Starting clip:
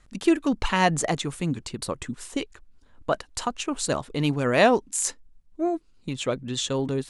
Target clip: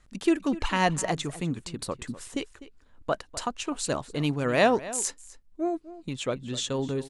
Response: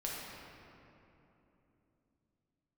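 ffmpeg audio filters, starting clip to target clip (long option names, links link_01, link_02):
-filter_complex "[0:a]asplit=2[link_01][link_02];[link_02]adelay=250.7,volume=-16dB,highshelf=frequency=4000:gain=-5.64[link_03];[link_01][link_03]amix=inputs=2:normalize=0,volume=-3dB"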